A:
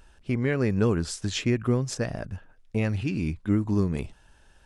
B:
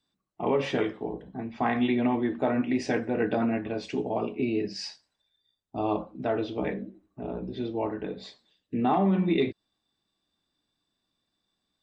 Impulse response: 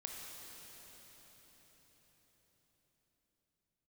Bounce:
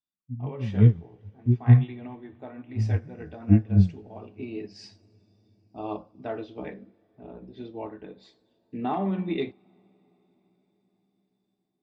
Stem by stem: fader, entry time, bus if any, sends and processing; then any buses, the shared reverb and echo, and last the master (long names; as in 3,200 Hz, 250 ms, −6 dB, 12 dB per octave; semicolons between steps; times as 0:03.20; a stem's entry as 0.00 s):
+1.5 dB, 0.00 s, send −14.5 dB, spectral tilt −2 dB per octave; every bin expanded away from the loudest bin 4 to 1
−7.5 dB, 0.00 s, send −18.5 dB, automatic gain control gain up to 9 dB; automatic ducking −8 dB, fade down 0.70 s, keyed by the first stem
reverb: on, RT60 5.4 s, pre-delay 20 ms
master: expander for the loud parts 1.5 to 1, over −36 dBFS